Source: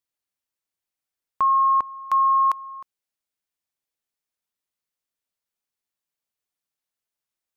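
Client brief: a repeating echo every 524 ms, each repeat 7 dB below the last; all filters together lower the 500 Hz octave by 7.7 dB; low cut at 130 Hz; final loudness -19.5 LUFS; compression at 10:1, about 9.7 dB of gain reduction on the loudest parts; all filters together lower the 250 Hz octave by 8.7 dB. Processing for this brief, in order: high-pass 130 Hz; peaking EQ 250 Hz -8.5 dB; peaking EQ 500 Hz -8.5 dB; compression 10:1, threshold -28 dBFS; feedback delay 524 ms, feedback 45%, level -7 dB; trim +11.5 dB

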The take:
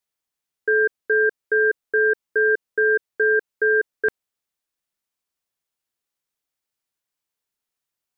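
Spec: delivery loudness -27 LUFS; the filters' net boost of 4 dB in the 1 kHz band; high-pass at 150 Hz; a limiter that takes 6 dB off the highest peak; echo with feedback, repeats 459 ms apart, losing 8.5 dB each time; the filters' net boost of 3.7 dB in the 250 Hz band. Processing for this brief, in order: high-pass 150 Hz; peaking EQ 250 Hz +7.5 dB; peaking EQ 1 kHz +5.5 dB; peak limiter -15 dBFS; feedback delay 459 ms, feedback 38%, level -8.5 dB; trim -3 dB

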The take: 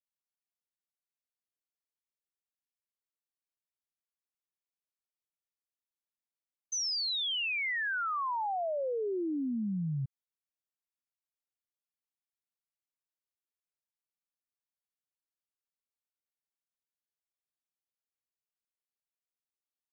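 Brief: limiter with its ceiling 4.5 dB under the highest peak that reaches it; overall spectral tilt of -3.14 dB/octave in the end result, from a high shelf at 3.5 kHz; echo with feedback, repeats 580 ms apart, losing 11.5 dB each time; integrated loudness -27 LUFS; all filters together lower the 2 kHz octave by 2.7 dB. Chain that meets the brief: peaking EQ 2 kHz -6 dB; treble shelf 3.5 kHz +8 dB; peak limiter -28.5 dBFS; feedback delay 580 ms, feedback 27%, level -11.5 dB; trim +5 dB

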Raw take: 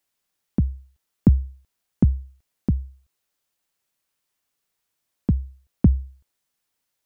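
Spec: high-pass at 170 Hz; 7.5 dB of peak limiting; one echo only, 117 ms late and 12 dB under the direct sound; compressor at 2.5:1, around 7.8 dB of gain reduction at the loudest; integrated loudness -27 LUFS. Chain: high-pass 170 Hz; compression 2.5:1, threshold -25 dBFS; peak limiter -19.5 dBFS; delay 117 ms -12 dB; trim +13.5 dB

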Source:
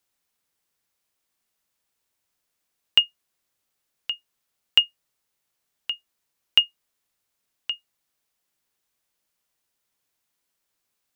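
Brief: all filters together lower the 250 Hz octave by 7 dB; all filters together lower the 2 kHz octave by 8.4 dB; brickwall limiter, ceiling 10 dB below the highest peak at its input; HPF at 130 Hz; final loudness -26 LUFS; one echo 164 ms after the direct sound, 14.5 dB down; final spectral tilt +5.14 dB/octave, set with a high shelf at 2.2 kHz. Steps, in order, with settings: high-pass 130 Hz; peaking EQ 250 Hz -9 dB; peaking EQ 2 kHz -6.5 dB; treble shelf 2.2 kHz -8 dB; peak limiter -22 dBFS; delay 164 ms -14.5 dB; trim +13 dB

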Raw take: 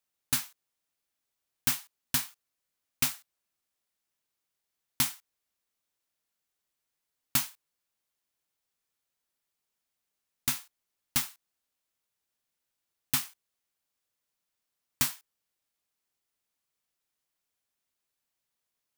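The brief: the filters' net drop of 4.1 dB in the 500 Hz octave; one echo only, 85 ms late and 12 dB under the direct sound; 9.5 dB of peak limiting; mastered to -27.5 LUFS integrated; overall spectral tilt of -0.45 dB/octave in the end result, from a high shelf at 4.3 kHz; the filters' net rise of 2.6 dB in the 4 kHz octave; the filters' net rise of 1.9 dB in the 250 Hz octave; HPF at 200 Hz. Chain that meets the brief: high-pass 200 Hz; peaking EQ 250 Hz +5.5 dB; peaking EQ 500 Hz -8 dB; peaking EQ 4 kHz +7 dB; treble shelf 4.3 kHz -6.5 dB; peak limiter -22 dBFS; delay 85 ms -12 dB; trim +11 dB

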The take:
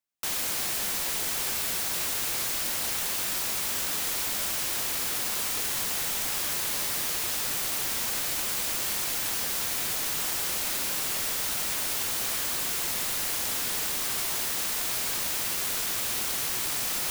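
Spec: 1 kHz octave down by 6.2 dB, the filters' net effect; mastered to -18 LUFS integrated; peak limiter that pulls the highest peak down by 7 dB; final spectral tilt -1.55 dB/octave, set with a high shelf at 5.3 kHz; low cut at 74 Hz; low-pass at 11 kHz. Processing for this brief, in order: high-pass 74 Hz; low-pass 11 kHz; peaking EQ 1 kHz -8 dB; treble shelf 5.3 kHz -7 dB; trim +19 dB; peak limiter -11 dBFS

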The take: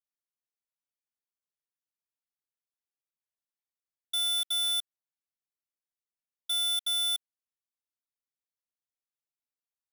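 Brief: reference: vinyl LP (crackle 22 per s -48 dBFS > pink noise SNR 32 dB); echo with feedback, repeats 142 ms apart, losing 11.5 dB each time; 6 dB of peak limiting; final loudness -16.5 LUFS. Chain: peak limiter -34 dBFS; feedback delay 142 ms, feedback 27%, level -11.5 dB; crackle 22 per s -48 dBFS; pink noise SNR 32 dB; trim +15.5 dB

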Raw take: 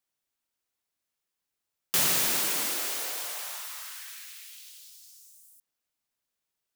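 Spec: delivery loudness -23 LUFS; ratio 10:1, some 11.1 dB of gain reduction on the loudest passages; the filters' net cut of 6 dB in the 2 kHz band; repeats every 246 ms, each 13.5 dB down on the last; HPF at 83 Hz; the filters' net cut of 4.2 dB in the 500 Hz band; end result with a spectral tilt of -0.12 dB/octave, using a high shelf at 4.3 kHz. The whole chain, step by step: high-pass 83 Hz; peaking EQ 500 Hz -5 dB; peaking EQ 2 kHz -6.5 dB; treble shelf 4.3 kHz -4.5 dB; compression 10:1, threshold -36 dBFS; feedback delay 246 ms, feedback 21%, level -13.5 dB; trim +16.5 dB

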